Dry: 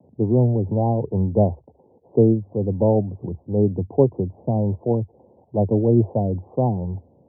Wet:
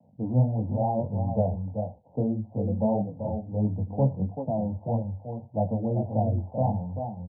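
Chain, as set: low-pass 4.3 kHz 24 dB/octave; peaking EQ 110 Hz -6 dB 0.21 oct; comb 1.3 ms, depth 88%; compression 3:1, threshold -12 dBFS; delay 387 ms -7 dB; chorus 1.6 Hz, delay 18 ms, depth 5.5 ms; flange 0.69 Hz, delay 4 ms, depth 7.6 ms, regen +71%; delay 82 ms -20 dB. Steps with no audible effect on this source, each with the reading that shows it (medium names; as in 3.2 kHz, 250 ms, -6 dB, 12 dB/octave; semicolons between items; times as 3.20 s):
low-pass 4.3 kHz: input has nothing above 910 Hz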